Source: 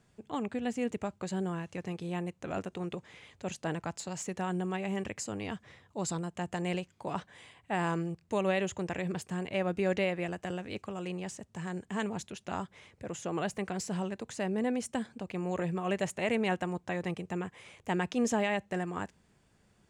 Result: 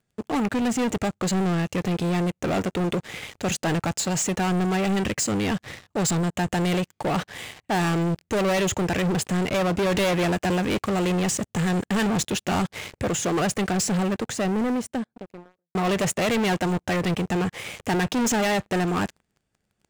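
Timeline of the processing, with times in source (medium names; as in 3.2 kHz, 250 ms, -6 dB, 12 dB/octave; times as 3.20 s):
9.94–13.09 s: waveshaping leveller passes 1
13.72–15.75 s: studio fade out
whole clip: band-stop 1 kHz, Q 9.1; waveshaping leveller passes 5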